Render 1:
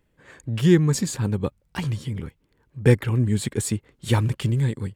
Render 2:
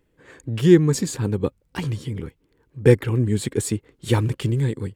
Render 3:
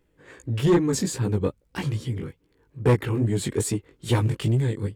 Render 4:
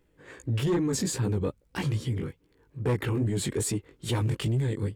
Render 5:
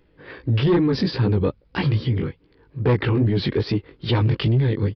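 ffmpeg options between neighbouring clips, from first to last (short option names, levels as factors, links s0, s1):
-af "superequalizer=6b=1.78:7b=1.78"
-af "flanger=delay=16:depth=5:speed=2.4,asoftclip=type=tanh:threshold=0.168,volume=1.33"
-af "alimiter=limit=0.0891:level=0:latency=1:release=16"
-af "aresample=11025,aresample=44100,volume=2.51"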